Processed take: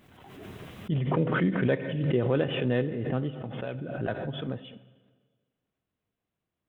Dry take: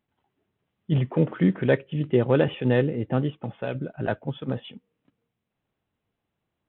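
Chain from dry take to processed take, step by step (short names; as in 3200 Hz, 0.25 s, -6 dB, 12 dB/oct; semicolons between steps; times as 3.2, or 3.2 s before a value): notch 860 Hz, Q 12; on a send at -14.5 dB: reverb RT60 1.6 s, pre-delay 18 ms; on the sum: backwards sustainer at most 37 dB/s; gain -6 dB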